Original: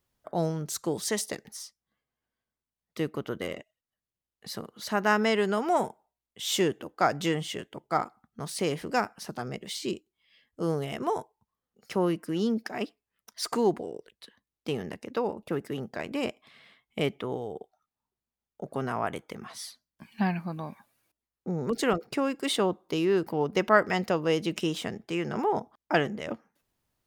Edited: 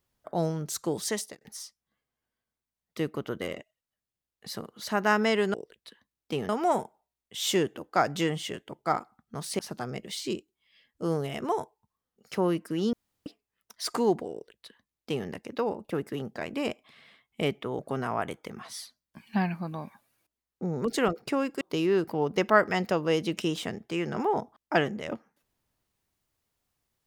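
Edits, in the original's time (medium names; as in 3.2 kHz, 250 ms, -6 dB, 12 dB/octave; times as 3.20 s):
0.98–1.41 s: fade out equal-power
8.64–9.17 s: delete
12.51–12.84 s: room tone
13.90–14.85 s: copy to 5.54 s
17.37–18.64 s: delete
22.46–22.80 s: delete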